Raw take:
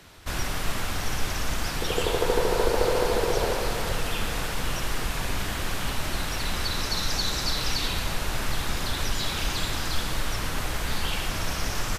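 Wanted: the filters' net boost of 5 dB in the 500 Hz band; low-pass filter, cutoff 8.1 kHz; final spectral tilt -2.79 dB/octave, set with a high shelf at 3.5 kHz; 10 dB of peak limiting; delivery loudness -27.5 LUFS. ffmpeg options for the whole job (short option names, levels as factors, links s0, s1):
-af "lowpass=8100,equalizer=f=500:t=o:g=5.5,highshelf=f=3500:g=6,volume=0.944,alimiter=limit=0.15:level=0:latency=1"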